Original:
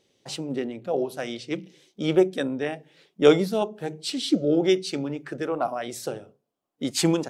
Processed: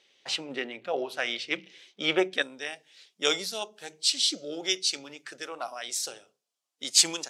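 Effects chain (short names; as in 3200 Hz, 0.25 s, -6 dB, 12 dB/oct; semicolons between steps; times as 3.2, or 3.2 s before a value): band-pass 2400 Hz, Q 1, from 2.42 s 6000 Hz; gain +9 dB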